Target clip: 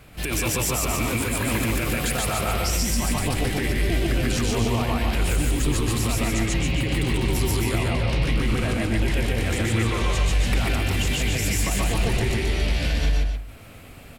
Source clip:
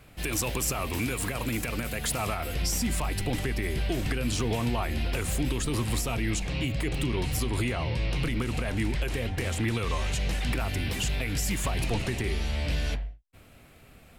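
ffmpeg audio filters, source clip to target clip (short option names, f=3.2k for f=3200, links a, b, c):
-filter_complex "[0:a]asplit=2[a][b];[b]aecho=0:1:142.9|288.6:1|0.501[c];[a][c]amix=inputs=2:normalize=0,alimiter=limit=-20.5dB:level=0:latency=1:release=66,asplit=2[d][e];[e]aecho=0:1:125:0.562[f];[d][f]amix=inputs=2:normalize=0,volume=5dB"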